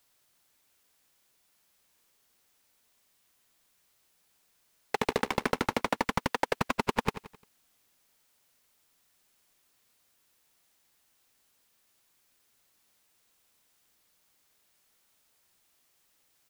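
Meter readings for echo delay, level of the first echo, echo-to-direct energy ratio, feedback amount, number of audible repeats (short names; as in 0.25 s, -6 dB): 87 ms, -13.0 dB, -12.0 dB, 43%, 4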